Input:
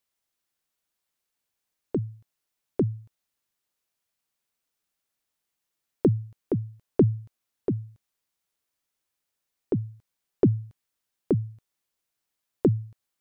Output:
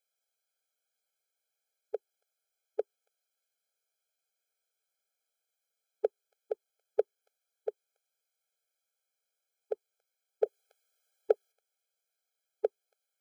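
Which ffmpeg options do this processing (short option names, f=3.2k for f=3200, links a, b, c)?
-filter_complex "[0:a]asplit=3[a][b][c];[a]afade=t=out:st=10.45:d=0.02[d];[b]acontrast=79,afade=t=in:st=10.45:d=0.02,afade=t=out:st=11.51:d=0.02[e];[c]afade=t=in:st=11.51:d=0.02[f];[d][e][f]amix=inputs=3:normalize=0,afftfilt=real='re*eq(mod(floor(b*sr/1024/430),2),1)':imag='im*eq(mod(floor(b*sr/1024/430),2),1)':win_size=1024:overlap=0.75"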